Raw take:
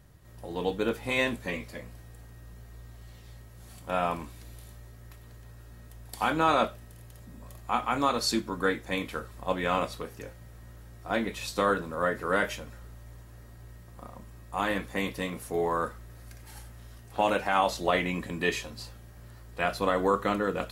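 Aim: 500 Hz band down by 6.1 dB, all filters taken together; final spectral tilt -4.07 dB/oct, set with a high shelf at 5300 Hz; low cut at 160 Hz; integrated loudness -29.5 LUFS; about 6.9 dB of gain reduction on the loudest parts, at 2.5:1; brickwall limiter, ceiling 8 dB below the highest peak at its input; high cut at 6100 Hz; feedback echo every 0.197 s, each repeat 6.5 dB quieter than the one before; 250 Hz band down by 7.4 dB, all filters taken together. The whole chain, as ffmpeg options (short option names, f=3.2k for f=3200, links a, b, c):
-af "highpass=160,lowpass=6.1k,equalizer=f=250:t=o:g=-7,equalizer=f=500:t=o:g=-5.5,highshelf=f=5.3k:g=-5,acompressor=threshold=-33dB:ratio=2.5,alimiter=level_in=3dB:limit=-24dB:level=0:latency=1,volume=-3dB,aecho=1:1:197|394|591|788|985|1182:0.473|0.222|0.105|0.0491|0.0231|0.0109,volume=10dB"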